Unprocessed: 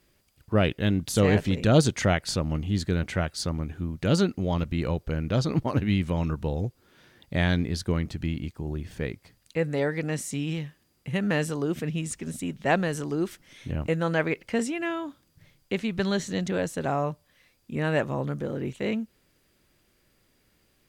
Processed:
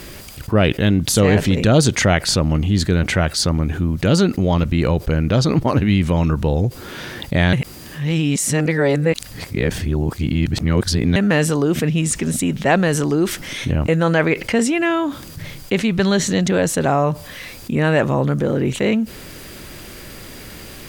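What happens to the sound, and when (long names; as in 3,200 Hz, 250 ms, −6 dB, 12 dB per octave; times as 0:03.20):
0:07.53–0:11.16: reverse
whole clip: envelope flattener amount 50%; level +4.5 dB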